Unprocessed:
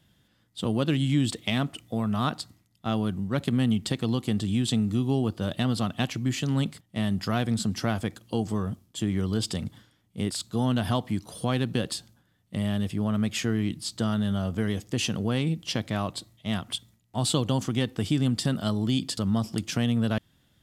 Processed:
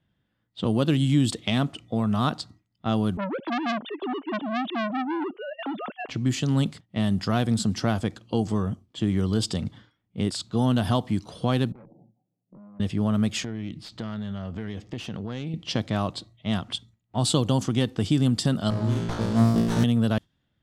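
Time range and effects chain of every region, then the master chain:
3.17–6.09 sine-wave speech + core saturation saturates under 1900 Hz
11.72–12.8 Chebyshev band-pass 120–820 Hz, order 5 + tube stage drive 35 dB, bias 0.3 + compressor 16:1, threshold -49 dBFS
13.43–15.54 self-modulated delay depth 0.097 ms + compressor 3:1, threshold -34 dBFS
18.7–19.84 compressor 3:1, threshold -26 dBFS + flutter echo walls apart 3 m, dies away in 0.98 s + running maximum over 17 samples
whole clip: spectral noise reduction 11 dB; low-pass opened by the level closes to 2600 Hz, open at -20 dBFS; dynamic EQ 2100 Hz, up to -4 dB, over -44 dBFS, Q 1.3; gain +3 dB

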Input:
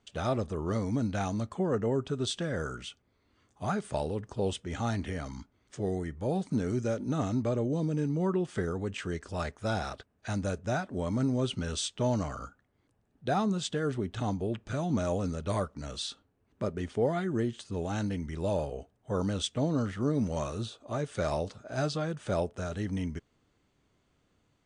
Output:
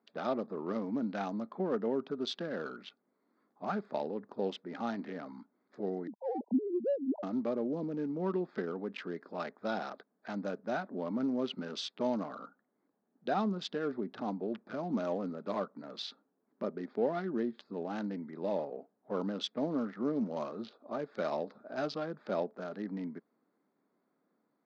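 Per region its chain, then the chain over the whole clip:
6.07–7.23 sine-wave speech + brick-wall FIR low-pass 1000 Hz
whole clip: Wiener smoothing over 15 samples; elliptic band-pass 210–4900 Hz, stop band 40 dB; gain -2 dB

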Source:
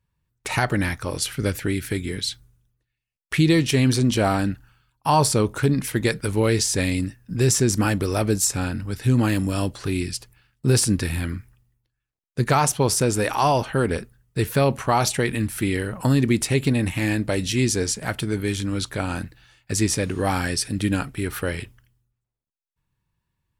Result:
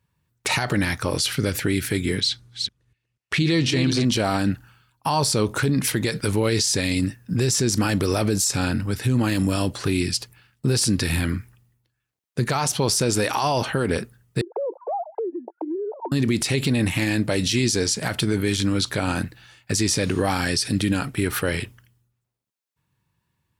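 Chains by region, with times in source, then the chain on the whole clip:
2.2–4.05 reverse delay 0.244 s, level -8 dB + air absorption 52 m
14.41–16.12 sine-wave speech + Chebyshev band-pass 340–910 Hz, order 4 + compressor 5:1, threshold -31 dBFS
whole clip: dynamic EQ 4500 Hz, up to +7 dB, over -40 dBFS, Q 1.2; limiter -18 dBFS; HPF 84 Hz; gain +5.5 dB

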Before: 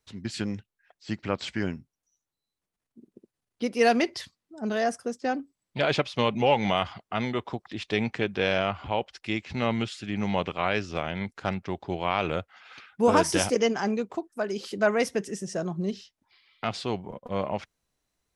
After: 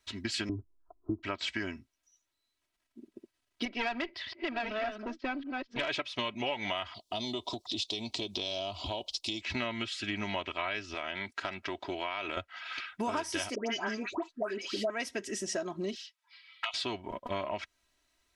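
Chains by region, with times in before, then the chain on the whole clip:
0.49–1.23 rippled Chebyshev low-pass 1300 Hz, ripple 6 dB + tilt -4.5 dB/oct + comb 2.8 ms, depth 75%
3.65–5.89 reverse delay 0.594 s, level -5.5 dB + LPF 3900 Hz 24 dB/oct + tube stage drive 18 dB, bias 0.7
6.94–9.41 EQ curve 720 Hz 0 dB, 1100 Hz -7 dB, 1600 Hz -29 dB, 3800 Hz +10 dB + compressor 2.5:1, threshold -33 dBFS
10.94–12.37 HPF 180 Hz 6 dB/oct + compressor 2:1, threshold -35 dBFS
13.55–14.9 high shelf 6300 Hz -7 dB + dispersion highs, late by 0.114 s, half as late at 1300 Hz
15.95–16.74 HPF 900 Hz 24 dB/oct + envelope flanger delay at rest 9.9 ms, full sweep at -33 dBFS
whole clip: bell 2700 Hz +9.5 dB 2.8 oct; comb 3.1 ms, depth 72%; compressor 6:1, threshold -30 dBFS; gain -1.5 dB

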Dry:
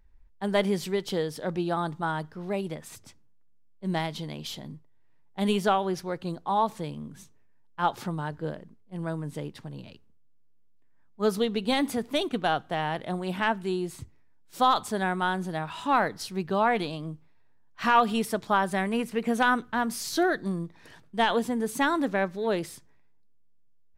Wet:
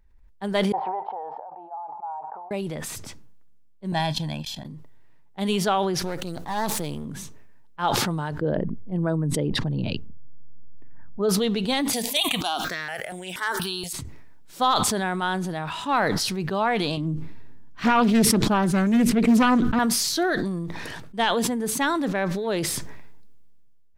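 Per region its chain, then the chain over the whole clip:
0.72–2.51 Butterworth band-pass 820 Hz, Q 4.4 + air absorption 310 m
3.92–4.65 gate -37 dBFS, range -26 dB + comb 1.2 ms, depth 81%
6.02–7.05 half-wave gain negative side -12 dB + high shelf 7000 Hz +11 dB + notch 1100 Hz, Q 15
8.41–11.29 formant sharpening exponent 1.5 + fast leveller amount 70%
11.93–13.93 tilt +4 dB/oct + step phaser 4.2 Hz 350–4300 Hz
16.97–19.79 resonant low shelf 430 Hz +8 dB, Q 1.5 + Doppler distortion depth 0.4 ms
whole clip: dynamic EQ 4400 Hz, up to +4 dB, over -43 dBFS, Q 0.93; sustainer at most 21 dB/s

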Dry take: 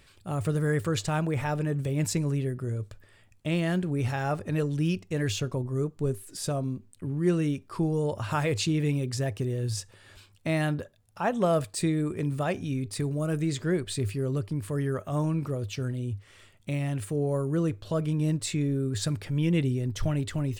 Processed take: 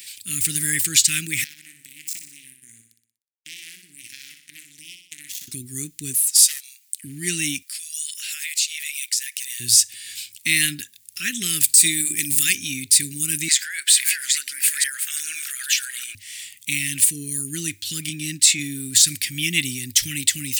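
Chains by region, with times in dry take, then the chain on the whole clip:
1.44–5.48 power-law curve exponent 3 + compressor 12:1, threshold -46 dBFS + feedback echo 61 ms, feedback 51%, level -7 dB
6.21–7.04 Bessel high-pass 1500 Hz, order 8 + Doppler distortion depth 0.53 ms
7.62–9.6 HPF 1300 Hz 24 dB/oct + compressor 2.5:1, threshold -47 dBFS
11.63–12.55 high shelf 5800 Hz +10.5 dB + notches 50/100/150/200/250/300/350 Hz
13.48–16.15 reverse delay 0.453 s, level -6 dB + resonant high-pass 1500 Hz, resonance Q 6.2 + compressor, threshold -33 dBFS
18.09–18.59 HPF 120 Hz + high shelf 6100 Hz -8.5 dB
whole clip: elliptic band-stop 290–2000 Hz, stop band 60 dB; differentiator; maximiser +28 dB; gain -1 dB

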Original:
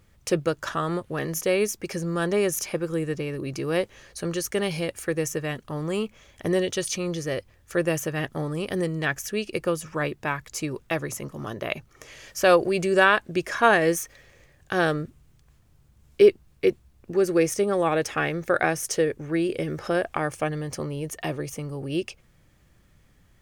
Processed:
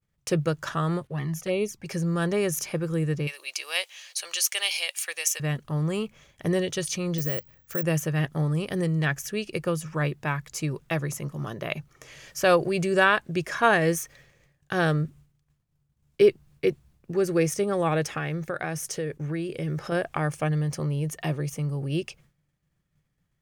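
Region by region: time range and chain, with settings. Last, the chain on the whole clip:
1.07–1.86 expander -53 dBFS + high shelf 5700 Hz -7 dB + envelope flanger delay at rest 2.8 ms, full sweep at -18.5 dBFS
3.27–5.4 HPF 720 Hz 24 dB/oct + resonant high shelf 2000 Hz +9 dB, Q 1.5
7.18–7.83 compressor 2.5:1, threshold -27 dBFS + careless resampling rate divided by 2×, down filtered, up zero stuff
18.17–19.92 expander -41 dBFS + compressor 2:1, threshold -29 dBFS
whole clip: low shelf 440 Hz -3 dB; expander -50 dBFS; bell 150 Hz +11.5 dB 0.53 oct; gain -1.5 dB

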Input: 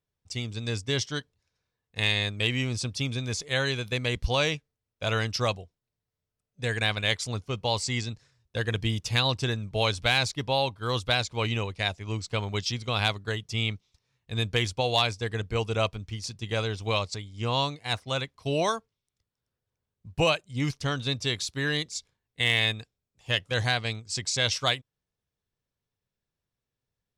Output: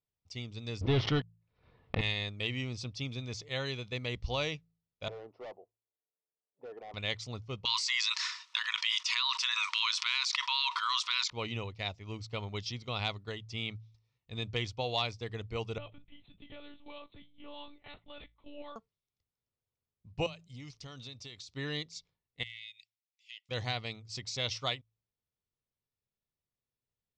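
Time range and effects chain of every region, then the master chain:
0.81–2.01 sample leveller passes 5 + air absorption 400 m + backwards sustainer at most 110 dB/s
5.08–6.94 block floating point 5-bit + Chebyshev band-pass 360–830 Hz + hard clip -33.5 dBFS
7.65–11.3 brick-wall FIR high-pass 920 Hz + fast leveller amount 100%
15.78–18.76 compressor 3:1, threshold -29 dBFS + resonator 160 Hz, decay 0.15 s, mix 70% + monotone LPC vocoder at 8 kHz 290 Hz
20.26–21.54 high shelf 4200 Hz +10 dB + compressor 12:1, threshold -34 dBFS
22.43–23.49 brick-wall FIR high-pass 1900 Hz + compressor 3:1, threshold -39 dBFS
whole clip: LPF 5900 Hz 24 dB/oct; notch 1600 Hz, Q 5.6; de-hum 55.42 Hz, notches 3; gain -8 dB

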